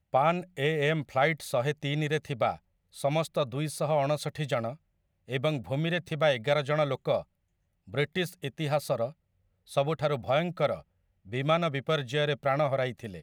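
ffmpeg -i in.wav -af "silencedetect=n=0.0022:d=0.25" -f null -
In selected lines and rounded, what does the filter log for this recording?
silence_start: 2.59
silence_end: 2.93 | silence_duration: 0.34
silence_start: 4.76
silence_end: 5.28 | silence_duration: 0.51
silence_start: 7.24
silence_end: 7.87 | silence_duration: 0.64
silence_start: 9.13
silence_end: 9.67 | silence_duration: 0.54
silence_start: 10.82
silence_end: 11.25 | silence_duration: 0.44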